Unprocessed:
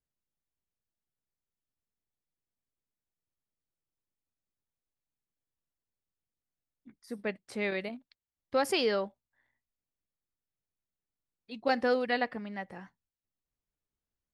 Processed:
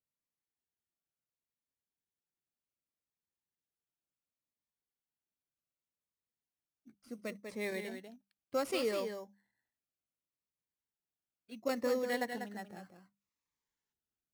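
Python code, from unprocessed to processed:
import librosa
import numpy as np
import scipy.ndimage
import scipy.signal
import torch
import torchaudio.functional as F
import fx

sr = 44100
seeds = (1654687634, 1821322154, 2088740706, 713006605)

p1 = fx.highpass(x, sr, hz=110.0, slope=6)
p2 = fx.hum_notches(p1, sr, base_hz=50, count=4)
p3 = p2 + fx.echo_single(p2, sr, ms=194, db=-7.5, dry=0)
p4 = fx.spec_box(p3, sr, start_s=13.21, length_s=0.72, low_hz=820.0, high_hz=7500.0, gain_db=11)
p5 = fx.sample_hold(p4, sr, seeds[0], rate_hz=6100.0, jitter_pct=0)
p6 = p4 + (p5 * librosa.db_to_amplitude(-4.0))
p7 = fx.notch_cascade(p6, sr, direction='falling', hz=0.68)
y = p7 * librosa.db_to_amplitude(-8.0)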